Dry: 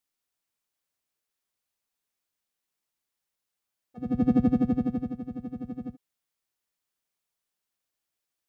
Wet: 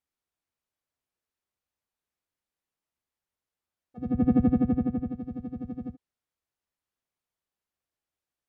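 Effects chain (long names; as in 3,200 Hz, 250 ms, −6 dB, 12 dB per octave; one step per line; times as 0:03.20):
treble cut that deepens with the level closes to 2,400 Hz, closed at −25.5 dBFS
parametric band 74 Hz +7.5 dB 0.68 octaves
one half of a high-frequency compander decoder only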